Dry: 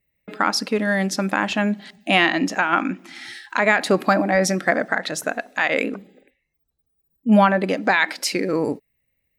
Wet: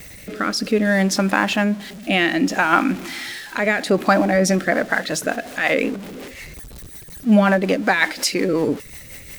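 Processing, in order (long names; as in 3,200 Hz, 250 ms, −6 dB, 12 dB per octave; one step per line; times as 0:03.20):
converter with a step at zero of −31.5 dBFS
rotating-speaker cabinet horn 0.6 Hz, later 5.5 Hz, at 0:03.90
level +3.5 dB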